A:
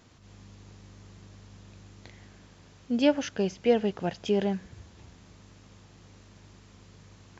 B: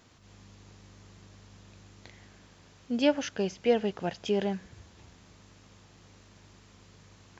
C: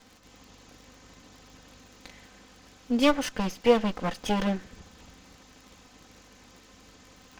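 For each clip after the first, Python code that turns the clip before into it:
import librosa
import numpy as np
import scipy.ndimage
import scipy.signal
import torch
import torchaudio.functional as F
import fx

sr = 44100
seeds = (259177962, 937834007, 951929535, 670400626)

y1 = fx.low_shelf(x, sr, hz=400.0, db=-4.0)
y2 = fx.lower_of_two(y1, sr, delay_ms=3.9)
y2 = fx.dmg_crackle(y2, sr, seeds[0], per_s=42.0, level_db=-48.0)
y2 = y2 * librosa.db_to_amplitude(5.0)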